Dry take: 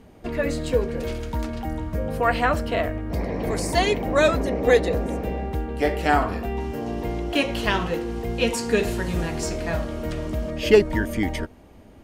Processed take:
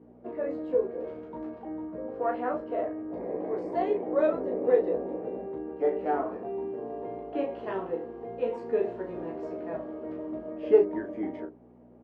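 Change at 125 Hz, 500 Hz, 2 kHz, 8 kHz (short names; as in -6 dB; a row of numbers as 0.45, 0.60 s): -22.0 dB, -4.5 dB, -18.5 dB, under -40 dB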